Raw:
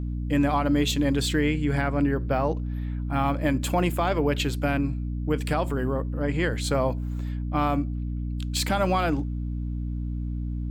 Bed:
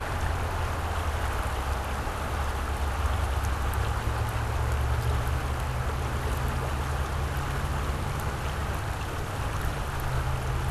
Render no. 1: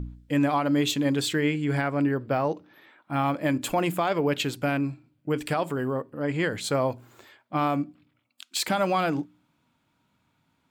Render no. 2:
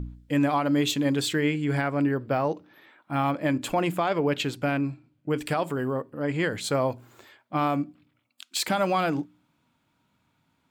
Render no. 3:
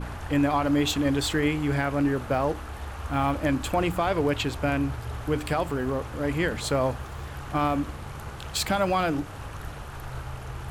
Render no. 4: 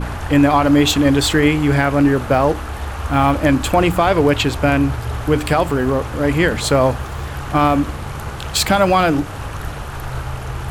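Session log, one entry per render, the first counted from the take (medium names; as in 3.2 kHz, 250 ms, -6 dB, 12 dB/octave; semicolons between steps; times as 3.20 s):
de-hum 60 Hz, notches 5
3.31–5.33 s: treble shelf 8.2 kHz -7.5 dB
add bed -7.5 dB
trim +10.5 dB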